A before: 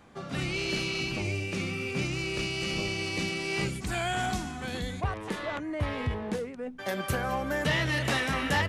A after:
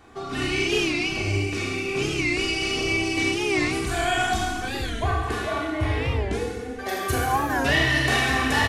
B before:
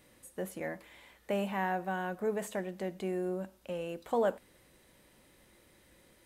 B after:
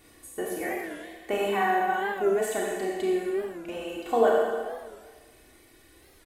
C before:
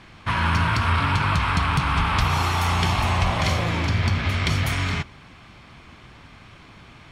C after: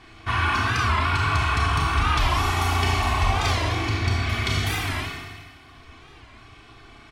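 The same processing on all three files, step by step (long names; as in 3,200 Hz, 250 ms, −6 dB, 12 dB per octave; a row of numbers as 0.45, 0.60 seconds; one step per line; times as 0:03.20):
reverb reduction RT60 1.4 s
comb filter 2.7 ms, depth 70%
four-comb reverb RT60 1.6 s, combs from 27 ms, DRR −3.5 dB
wow of a warped record 45 rpm, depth 160 cents
normalise the peak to −9 dBFS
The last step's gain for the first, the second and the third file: +2.5, +3.5, −4.0 decibels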